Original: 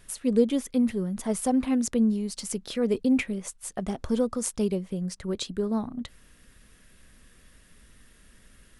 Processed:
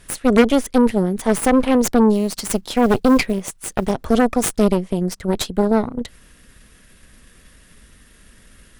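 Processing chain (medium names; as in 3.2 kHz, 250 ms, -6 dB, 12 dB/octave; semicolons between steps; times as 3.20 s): Chebyshev shaper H 8 -13 dB, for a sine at -10 dBFS; 2.14–3.92 s: short-mantissa float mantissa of 4-bit; trim +7.5 dB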